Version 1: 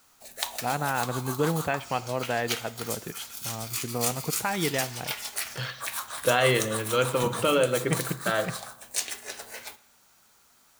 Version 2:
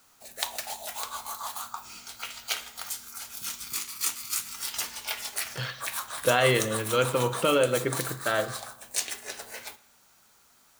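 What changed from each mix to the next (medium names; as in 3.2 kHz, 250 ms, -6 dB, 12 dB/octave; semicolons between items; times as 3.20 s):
first voice: muted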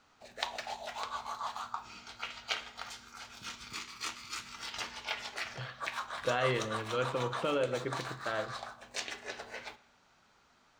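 speech -8.0 dB; master: add distance through air 170 m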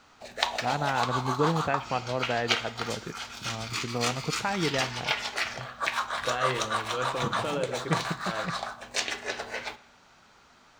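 first voice: unmuted; background +9.0 dB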